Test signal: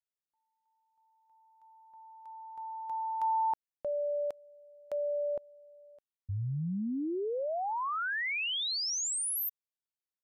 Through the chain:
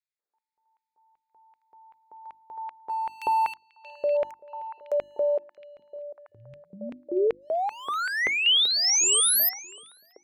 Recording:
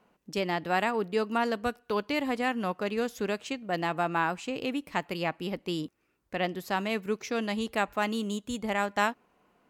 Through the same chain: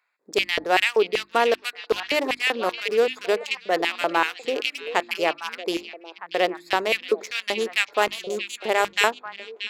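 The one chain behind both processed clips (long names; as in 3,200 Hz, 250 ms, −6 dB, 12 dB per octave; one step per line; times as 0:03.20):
adaptive Wiener filter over 15 samples
high-shelf EQ 2,400 Hz +9 dB
auto-filter high-pass square 2.6 Hz 420–2,400 Hz
mains-hum notches 50/100/150/200/250/300/350 Hz
on a send: echo through a band-pass that steps 631 ms, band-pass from 3,300 Hz, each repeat −1.4 octaves, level −8 dB
on the sum: level +4.5 dB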